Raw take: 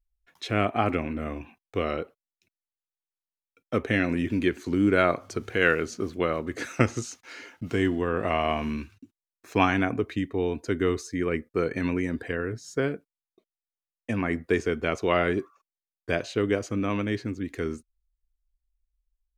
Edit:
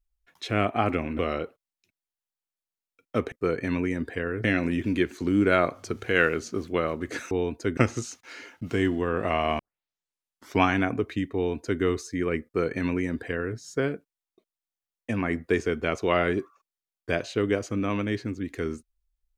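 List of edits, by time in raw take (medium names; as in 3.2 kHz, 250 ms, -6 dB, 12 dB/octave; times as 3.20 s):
1.19–1.77 s: delete
8.59 s: tape start 1.04 s
10.35–10.81 s: copy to 6.77 s
11.45–12.57 s: copy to 3.90 s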